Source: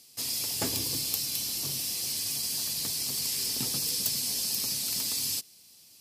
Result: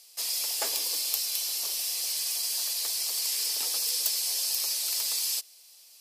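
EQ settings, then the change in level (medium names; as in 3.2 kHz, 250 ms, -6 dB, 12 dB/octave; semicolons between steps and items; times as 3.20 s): high-pass 500 Hz 24 dB/octave; +1.5 dB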